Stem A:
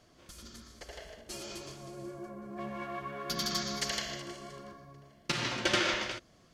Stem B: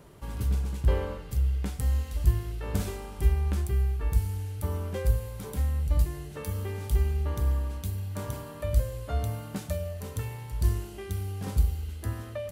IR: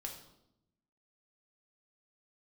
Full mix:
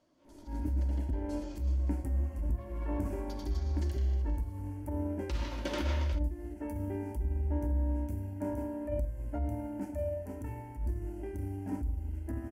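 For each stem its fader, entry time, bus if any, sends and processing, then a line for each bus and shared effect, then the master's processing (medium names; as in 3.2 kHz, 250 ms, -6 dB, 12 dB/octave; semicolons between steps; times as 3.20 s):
2.88 s -13.5 dB -> 3.56 s -20.5 dB -> 4.93 s -20.5 dB -> 5.29 s -12 dB, 0.00 s, no send, none
-8.0 dB, 0.25 s, send -5.5 dB, tilt EQ -2 dB/octave; compression 6:1, threshold -20 dBFS, peak gain reduction 12.5 dB; static phaser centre 760 Hz, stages 8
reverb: on, RT60 0.80 s, pre-delay 4 ms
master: transient shaper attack -7 dB, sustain -2 dB; small resonant body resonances 290/570/920 Hz, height 14 dB, ringing for 45 ms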